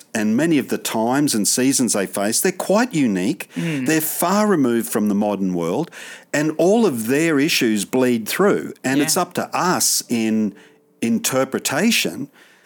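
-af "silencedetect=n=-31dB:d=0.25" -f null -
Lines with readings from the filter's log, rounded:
silence_start: 10.50
silence_end: 11.02 | silence_duration: 0.52
silence_start: 12.25
silence_end: 12.66 | silence_duration: 0.41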